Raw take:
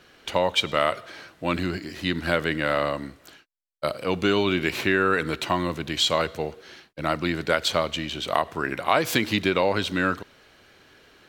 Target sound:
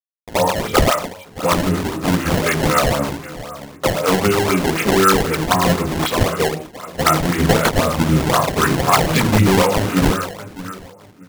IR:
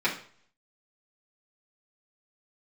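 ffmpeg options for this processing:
-filter_complex "[0:a]afwtdn=0.0355,aemphasis=mode=production:type=75kf,acrusher=bits=5:mix=0:aa=0.000001,acompressor=threshold=-28dB:ratio=4[a];[1:a]atrim=start_sample=2205,atrim=end_sample=4410,asetrate=23373,aresample=44100[b];[a][b]afir=irnorm=-1:irlink=0,acrossover=split=600[c][d];[c]aeval=exprs='val(0)*(1-0.5/2+0.5/2*cos(2*PI*7*n/s))':c=same[e];[d]aeval=exprs='val(0)*(1-0.5/2-0.5/2*cos(2*PI*7*n/s))':c=same[f];[e][f]amix=inputs=2:normalize=0,asettb=1/sr,asplit=3[g][h][i];[g]atrim=end=7.384[j];[h]atrim=start=7.38:end=9.62,asetpts=PTS-STARTPTS,afade=t=in:d=0.004:c=qsin,afade=t=out:st=2.236:d=0.004:c=qsin,bass=f=250:g=8,treble=f=4k:g=12[k];[i]atrim=start=9.616[l];[j][k]acrossfade=d=0.004:c1=hsin:c2=qsin[m];[m][l]acrossfade=d=0.004:c1=qsin:c2=hsin,asplit=2[n][o];[o]adelay=622,lowpass=f=1.7k:p=1,volume=-14.5dB,asplit=2[p][q];[q]adelay=622,lowpass=f=1.7k:p=1,volume=0.3,asplit=2[r][s];[s]adelay=622,lowpass=f=1.7k:p=1,volume=0.3[t];[n][p][r][t]amix=inputs=4:normalize=0,acrusher=samples=21:mix=1:aa=0.000001:lfo=1:lforange=33.6:lforate=3.9,volume=1.5dB"

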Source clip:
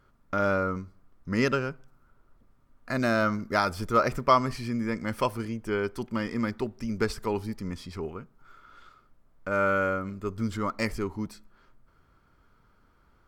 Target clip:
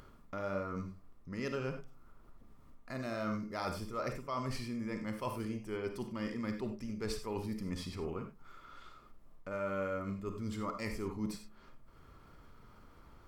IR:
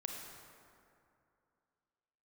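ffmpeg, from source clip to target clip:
-filter_complex "[0:a]equalizer=f=1.5k:t=o:w=0.31:g=-6.5,areverse,acompressor=threshold=-35dB:ratio=8,areverse[a];[1:a]atrim=start_sample=2205,afade=t=out:st=0.15:d=0.01,atrim=end_sample=7056[b];[a][b]afir=irnorm=-1:irlink=0,acompressor=mode=upward:threshold=-51dB:ratio=2.5,volume=2.5dB"

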